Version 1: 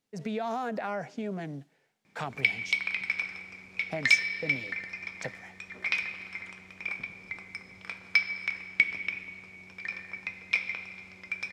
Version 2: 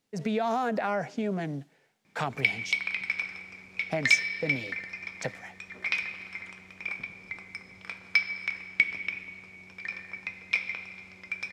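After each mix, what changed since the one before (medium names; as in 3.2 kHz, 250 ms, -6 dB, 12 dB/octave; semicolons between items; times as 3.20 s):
speech +4.5 dB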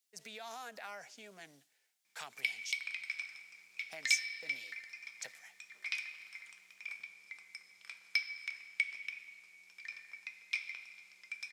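master: add differentiator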